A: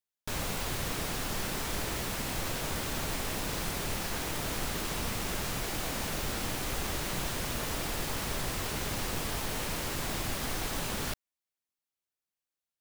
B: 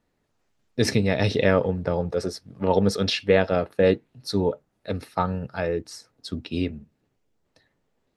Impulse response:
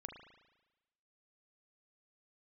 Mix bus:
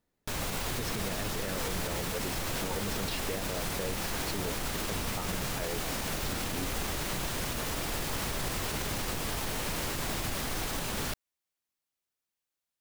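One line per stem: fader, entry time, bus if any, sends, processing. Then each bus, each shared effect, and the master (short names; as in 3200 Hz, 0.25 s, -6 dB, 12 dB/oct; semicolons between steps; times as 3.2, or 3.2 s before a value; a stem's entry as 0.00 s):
+2.5 dB, 0.00 s, no send, dry
-8.0 dB, 0.00 s, no send, compressor, threshold -22 dBFS, peak gain reduction 9 dB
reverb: off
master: limiter -23.5 dBFS, peak gain reduction 8 dB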